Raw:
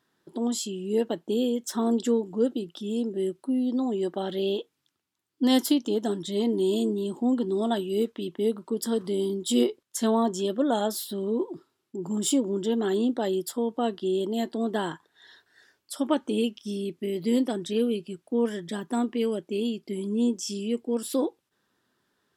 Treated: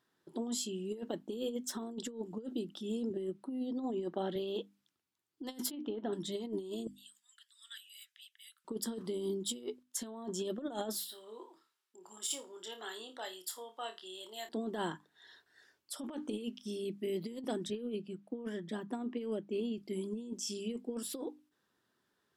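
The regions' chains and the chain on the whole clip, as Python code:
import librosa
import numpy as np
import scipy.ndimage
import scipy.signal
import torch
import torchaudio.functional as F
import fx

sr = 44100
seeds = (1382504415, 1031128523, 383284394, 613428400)

y = fx.chain(x, sr, fx.high_shelf(hz=4500.0, db=-8.5),
    fx.band_squash(depth_pct=40), at=(3.1, 4.36))
y = fx.chain(y, sr, fx.lowpass(hz=2900.0, slope=24),
    fx.low_shelf(hz=240.0, db=-4.0), at=(5.71, 6.13))
y = fx.chain(y, sr, fx.steep_highpass(hz=1600.0, slope=48),
    fx.peak_eq(hz=2500.0, db=-4.5, octaves=2.7),
    fx.notch(hz=4200.0, q=16.0), at=(6.87, 8.65))
y = fx.chain(y, sr, fx.highpass(hz=1100.0, slope=12),
    fx.room_flutter(wall_m=4.7, rt60_s=0.22), at=(11.05, 14.49))
y = fx.chain(y, sr, fx.cheby1_highpass(hz=160.0, order=2),
    fx.high_shelf(hz=4300.0, db=-10.0), at=(17.7, 19.78))
y = fx.hum_notches(y, sr, base_hz=50, count=6)
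y = fx.over_compress(y, sr, threshold_db=-28.0, ratio=-0.5)
y = y * 10.0 ** (-8.5 / 20.0)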